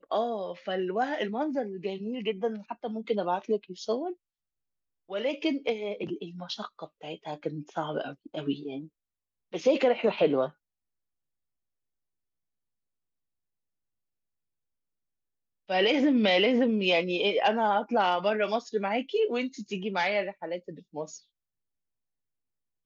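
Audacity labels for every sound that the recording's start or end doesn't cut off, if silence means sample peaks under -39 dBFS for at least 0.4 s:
5.100000	8.860000	sound
9.530000	10.490000	sound
15.690000	21.160000	sound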